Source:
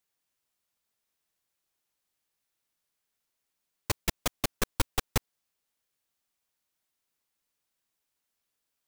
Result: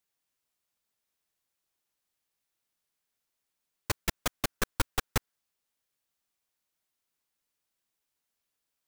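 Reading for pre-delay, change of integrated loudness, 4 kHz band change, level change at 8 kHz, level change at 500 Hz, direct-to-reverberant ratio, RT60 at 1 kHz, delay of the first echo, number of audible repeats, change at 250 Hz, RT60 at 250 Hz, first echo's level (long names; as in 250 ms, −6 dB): no reverb audible, −1.0 dB, −1.5 dB, −1.5 dB, −1.5 dB, no reverb audible, no reverb audible, no echo audible, no echo audible, −1.5 dB, no reverb audible, no echo audible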